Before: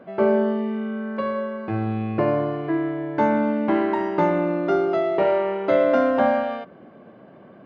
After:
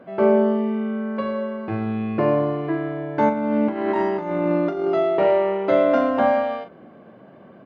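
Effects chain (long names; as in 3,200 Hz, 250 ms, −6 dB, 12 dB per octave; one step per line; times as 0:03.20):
0:03.29–0:04.88: compressor whose output falls as the input rises −23 dBFS, ratio −0.5
double-tracking delay 41 ms −9 dB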